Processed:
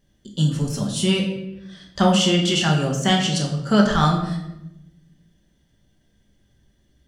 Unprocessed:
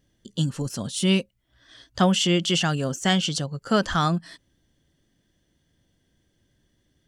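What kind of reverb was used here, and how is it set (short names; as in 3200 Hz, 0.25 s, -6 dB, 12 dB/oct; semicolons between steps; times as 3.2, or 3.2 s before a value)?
shoebox room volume 300 m³, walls mixed, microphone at 1.2 m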